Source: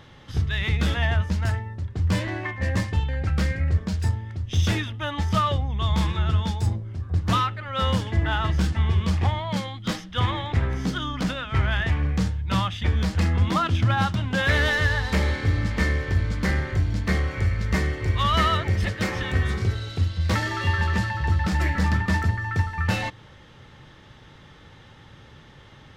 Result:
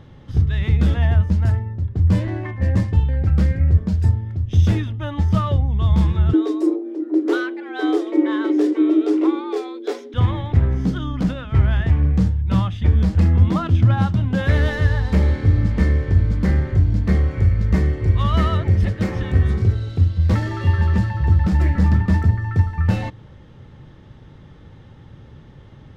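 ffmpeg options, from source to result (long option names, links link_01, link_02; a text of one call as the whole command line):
ffmpeg -i in.wav -filter_complex "[0:a]asettb=1/sr,asplit=3[link_01][link_02][link_03];[link_01]atrim=end=6.334[link_04];[link_02]atrim=start=6.33:end=10.14,asetpts=PTS-STARTPTS,afade=type=in:duration=0.004:curve=qsin,afade=type=out:start_time=3.806:duration=0.004:curve=qsin,afreqshift=230[link_05];[link_03]atrim=start=10.136[link_06];[link_04][link_05]acrossfade=duration=0.004:curve1=hsin:curve2=qsin[link_07];[link_07][link_06]acrossfade=duration=0.004:curve1=qsin:curve2=hsin,tiltshelf=frequency=700:gain=7.5" out.wav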